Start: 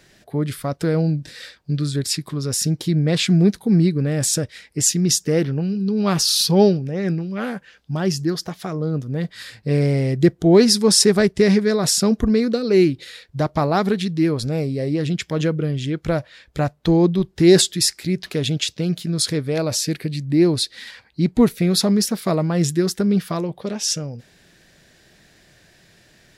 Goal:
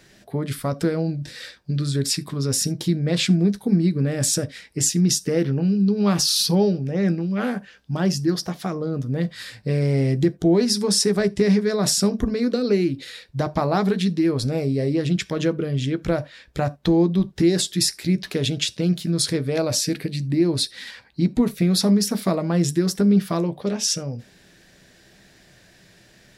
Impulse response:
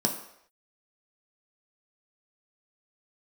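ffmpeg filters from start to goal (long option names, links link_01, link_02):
-filter_complex "[0:a]acompressor=threshold=-17dB:ratio=6,asplit=2[link_01][link_02];[1:a]atrim=start_sample=2205,atrim=end_sample=3528,adelay=12[link_03];[link_02][link_03]afir=irnorm=-1:irlink=0,volume=-20.5dB[link_04];[link_01][link_04]amix=inputs=2:normalize=0"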